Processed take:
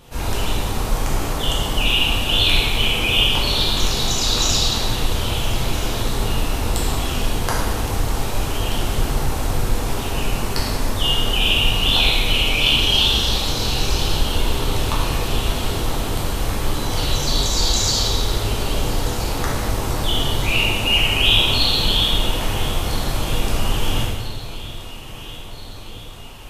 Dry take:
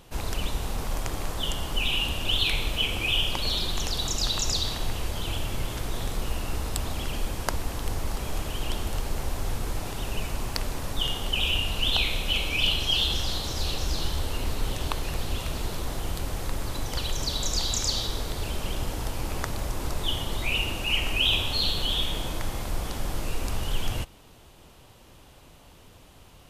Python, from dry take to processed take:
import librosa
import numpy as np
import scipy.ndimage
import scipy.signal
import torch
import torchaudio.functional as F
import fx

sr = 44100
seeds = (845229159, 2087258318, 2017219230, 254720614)

y = fx.echo_alternate(x, sr, ms=663, hz=830.0, feedback_pct=77, wet_db=-13.5)
y = fx.rev_plate(y, sr, seeds[0], rt60_s=1.5, hf_ratio=0.8, predelay_ms=0, drr_db=-6.5)
y = y * librosa.db_to_amplitude(2.0)